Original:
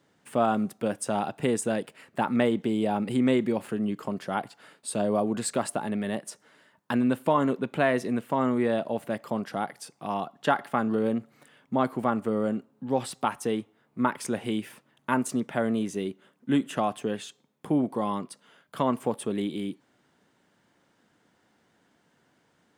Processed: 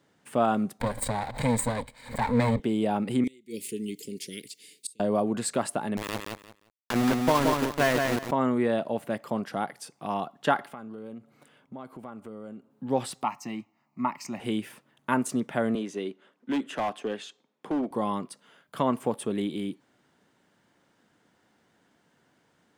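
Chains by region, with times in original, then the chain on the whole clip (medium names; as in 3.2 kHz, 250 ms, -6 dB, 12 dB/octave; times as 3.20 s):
0.80–2.60 s: comb filter that takes the minimum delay 1.3 ms + rippled EQ curve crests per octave 0.99, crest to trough 11 dB + swell ahead of each attack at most 140 dB/s
3.24–5.00 s: Chebyshev band-stop 440–2100 Hz, order 4 + tone controls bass -10 dB, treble +14 dB + inverted gate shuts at -20 dBFS, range -28 dB
5.97–8.31 s: small samples zeroed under -24.5 dBFS + feedback delay 175 ms, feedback 20%, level -4 dB
10.65–12.71 s: band-stop 1.8 kHz, Q 8.9 + compression 2.5:1, threshold -45 dBFS + tape noise reduction on one side only decoder only
13.23–14.40 s: high-pass 160 Hz + static phaser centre 2.3 kHz, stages 8
15.75–17.91 s: three-band isolator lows -17 dB, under 220 Hz, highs -12 dB, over 6.5 kHz + overload inside the chain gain 23.5 dB
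whole clip: none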